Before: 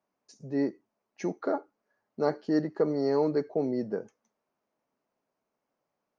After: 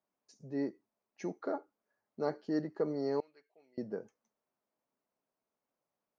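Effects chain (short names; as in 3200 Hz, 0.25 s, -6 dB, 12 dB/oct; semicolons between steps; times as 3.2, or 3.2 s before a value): 3.2–3.78 band-pass 2800 Hz, Q 5.2; gain -7 dB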